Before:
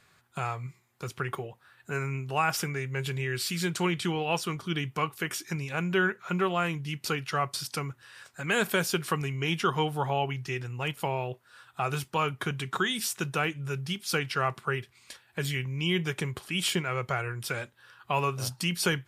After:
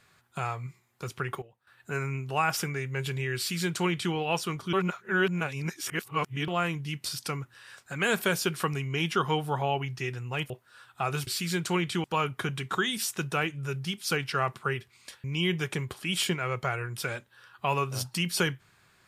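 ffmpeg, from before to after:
ffmpeg -i in.wav -filter_complex "[0:a]asplit=10[link_01][link_02][link_03][link_04][link_05][link_06][link_07][link_08][link_09][link_10];[link_01]atrim=end=1.42,asetpts=PTS-STARTPTS,afade=type=out:start_time=1.16:duration=0.26:curve=log:silence=0.188365[link_11];[link_02]atrim=start=1.42:end=1.67,asetpts=PTS-STARTPTS,volume=-14.5dB[link_12];[link_03]atrim=start=1.67:end=4.732,asetpts=PTS-STARTPTS,afade=type=in:duration=0.26:curve=log:silence=0.188365[link_13];[link_04]atrim=start=4.728:end=6.482,asetpts=PTS-STARTPTS,areverse[link_14];[link_05]atrim=start=6.478:end=7.062[link_15];[link_06]atrim=start=7.538:end=10.982[link_16];[link_07]atrim=start=11.288:end=12.062[link_17];[link_08]atrim=start=3.368:end=4.142[link_18];[link_09]atrim=start=12.058:end=15.262[link_19];[link_10]atrim=start=15.698[link_20];[link_11][link_12][link_13]concat=n=3:v=0:a=1[link_21];[link_21][link_14]acrossfade=duration=0.004:curve1=hsin:curve2=hsin[link_22];[link_22][link_15]acrossfade=duration=0.004:curve1=hsin:curve2=hsin[link_23];[link_23][link_16]acrossfade=duration=0.004:curve1=hsin:curve2=hsin[link_24];[link_24][link_17]acrossfade=duration=0.004:curve1=hsin:curve2=hsin[link_25];[link_25][link_18]acrossfade=duration=0.004:curve1=hsin:curve2=hsin[link_26];[link_26][link_19]acrossfade=duration=0.004:curve1=hsin:curve2=hsin[link_27];[link_27][link_20]acrossfade=duration=0.004:curve1=hsin:curve2=hsin" out.wav

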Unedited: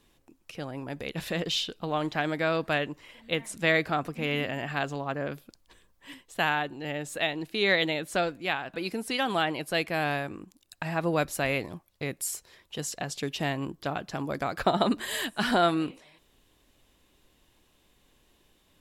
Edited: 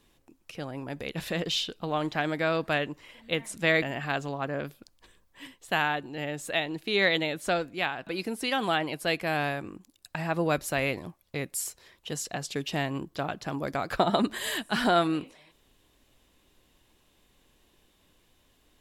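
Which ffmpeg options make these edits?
ffmpeg -i in.wav -filter_complex "[0:a]asplit=2[link_01][link_02];[link_01]atrim=end=3.822[link_03];[link_02]atrim=start=4.488[link_04];[link_03][link_04]acrossfade=duration=0.004:curve1=hsin:curve2=hsin" out.wav

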